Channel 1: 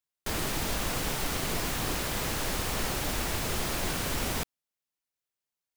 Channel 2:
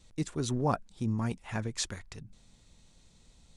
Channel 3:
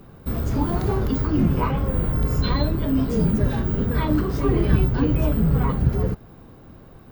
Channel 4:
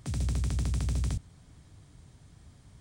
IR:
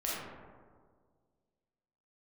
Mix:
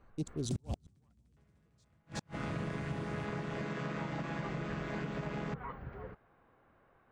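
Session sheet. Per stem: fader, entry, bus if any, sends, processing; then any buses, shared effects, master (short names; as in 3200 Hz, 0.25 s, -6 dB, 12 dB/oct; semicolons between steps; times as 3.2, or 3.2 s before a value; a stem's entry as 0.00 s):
-0.5 dB, 1.10 s, bus A, no send, no echo send, chord vocoder minor triad, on C#3; vocal rider
-4.0 dB, 0.00 s, bus B, no send, echo send -10.5 dB, Wiener smoothing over 25 samples; hard clip -24.5 dBFS, distortion -16 dB
-14.5 dB, 0.00 s, bus A, no send, no echo send, three-band isolator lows -13 dB, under 480 Hz, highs -19 dB, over 3600 Hz; auto duck -15 dB, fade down 0.65 s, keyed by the second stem
+2.5 dB, 0.45 s, bus B, no send, echo send -5.5 dB, bell 160 Hz +12 dB 2.3 oct; compressor 2.5:1, threshold -27 dBFS, peak gain reduction 6.5 dB; flange 1.3 Hz, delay 3.7 ms, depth 9.5 ms, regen +46%
bus A: 0.0 dB, high shelf 2900 Hz -11 dB; compressor 12:1, threshold -35 dBFS, peak gain reduction 7 dB
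bus B: 0.0 dB, Butterworth band-stop 1500 Hz, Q 0.54; limiter -27 dBFS, peak gain reduction 9.5 dB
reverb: off
echo: echo 0.371 s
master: bell 1900 Hz +7.5 dB 1.6 oct; flipped gate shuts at -26 dBFS, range -37 dB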